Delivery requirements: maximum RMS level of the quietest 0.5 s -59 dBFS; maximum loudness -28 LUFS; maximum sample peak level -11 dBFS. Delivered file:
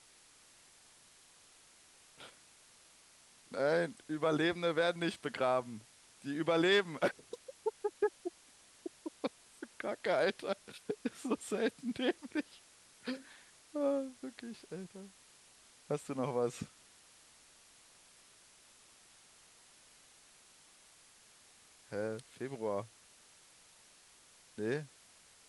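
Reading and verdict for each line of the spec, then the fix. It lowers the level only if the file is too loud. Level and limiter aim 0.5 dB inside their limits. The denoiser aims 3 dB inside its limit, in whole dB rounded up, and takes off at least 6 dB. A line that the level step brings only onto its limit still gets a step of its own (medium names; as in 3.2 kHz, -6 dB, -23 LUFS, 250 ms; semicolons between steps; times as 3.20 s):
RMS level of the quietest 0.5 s -63 dBFS: pass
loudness -36.5 LUFS: pass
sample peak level -19.0 dBFS: pass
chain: none needed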